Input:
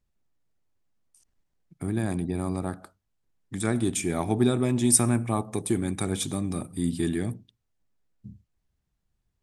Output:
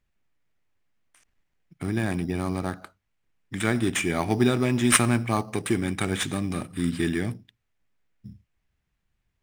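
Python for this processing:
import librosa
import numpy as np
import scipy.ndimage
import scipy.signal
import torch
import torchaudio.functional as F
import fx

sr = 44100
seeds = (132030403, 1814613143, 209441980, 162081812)

p1 = fx.sample_hold(x, sr, seeds[0], rate_hz=5300.0, jitter_pct=0)
p2 = x + (p1 * 10.0 ** (-7.0 / 20.0))
p3 = fx.peak_eq(p2, sr, hz=2300.0, db=10.5, octaves=1.6)
y = p3 * 10.0 ** (-2.5 / 20.0)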